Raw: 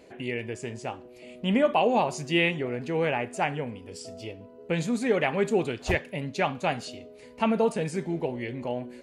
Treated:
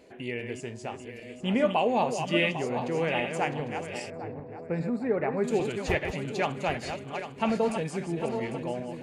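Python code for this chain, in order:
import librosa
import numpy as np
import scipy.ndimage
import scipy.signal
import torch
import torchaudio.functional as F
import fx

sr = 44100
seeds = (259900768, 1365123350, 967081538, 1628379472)

y = fx.reverse_delay_fb(x, sr, ms=400, feedback_pct=61, wet_db=-7)
y = fx.moving_average(y, sr, points=14, at=(4.1, 5.44))
y = y * 10.0 ** (-2.5 / 20.0)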